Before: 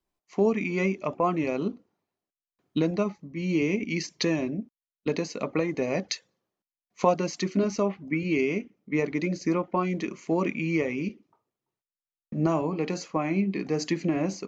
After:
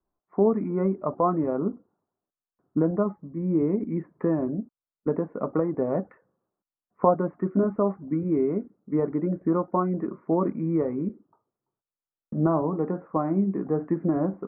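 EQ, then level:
Butterworth low-pass 1,500 Hz 48 dB per octave
+2.0 dB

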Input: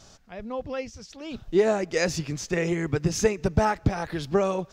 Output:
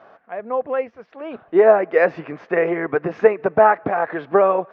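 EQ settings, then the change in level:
loudspeaker in its box 360–2,100 Hz, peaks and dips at 480 Hz +4 dB, 690 Hz +7 dB, 1,100 Hz +5 dB, 1,600 Hz +3 dB
+7.0 dB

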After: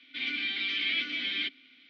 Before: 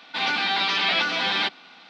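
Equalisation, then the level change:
formant filter i
low-shelf EQ 120 Hz −10 dB
low-shelf EQ 450 Hz −5 dB
+4.5 dB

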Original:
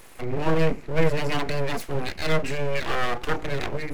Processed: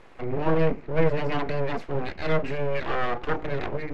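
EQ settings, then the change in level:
low-pass filter 4,500 Hz 12 dB per octave
low-shelf EQ 220 Hz −4 dB
high-shelf EQ 2,400 Hz −11.5 dB
+1.5 dB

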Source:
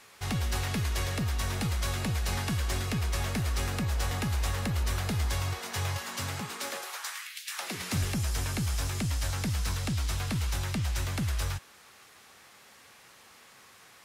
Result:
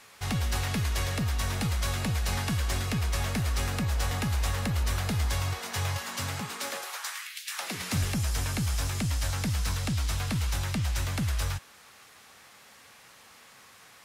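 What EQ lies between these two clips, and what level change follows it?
parametric band 370 Hz −4 dB 0.33 octaves
+1.5 dB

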